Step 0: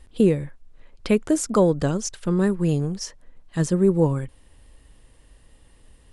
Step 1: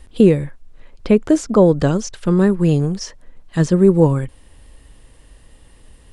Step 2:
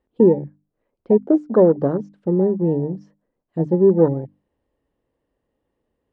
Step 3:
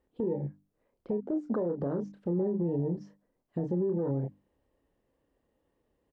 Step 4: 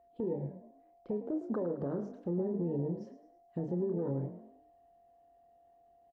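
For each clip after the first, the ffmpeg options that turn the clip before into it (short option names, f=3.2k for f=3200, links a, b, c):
-filter_complex "[0:a]acrossover=split=6400[a][b];[b]acompressor=threshold=-53dB:ratio=4:attack=1:release=60[c];[a][c]amix=inputs=2:normalize=0,acrossover=split=960[d][e];[e]alimiter=level_in=1.5dB:limit=-24dB:level=0:latency=1:release=232,volume=-1.5dB[f];[d][f]amix=inputs=2:normalize=0,volume=6.5dB"
-af "bandpass=f=420:t=q:w=0.82:csg=0,afwtdn=0.0631,bandreject=f=50:t=h:w=6,bandreject=f=100:t=h:w=6,bandreject=f=150:t=h:w=6,bandreject=f=200:t=h:w=6,bandreject=f=250:t=h:w=6,bandreject=f=300:t=h:w=6"
-filter_complex "[0:a]asplit=2[a][b];[b]adelay=29,volume=-7dB[c];[a][c]amix=inputs=2:normalize=0,acompressor=threshold=-17dB:ratio=6,alimiter=limit=-21.5dB:level=0:latency=1:release=97,volume=-1.5dB"
-filter_complex "[0:a]aeval=exprs='val(0)+0.00126*sin(2*PI*690*n/s)':c=same,asplit=2[a][b];[b]asplit=4[c][d][e][f];[c]adelay=107,afreqshift=43,volume=-12dB[g];[d]adelay=214,afreqshift=86,volume=-20.2dB[h];[e]adelay=321,afreqshift=129,volume=-28.4dB[i];[f]adelay=428,afreqshift=172,volume=-36.5dB[j];[g][h][i][j]amix=inputs=4:normalize=0[k];[a][k]amix=inputs=2:normalize=0,volume=-4dB"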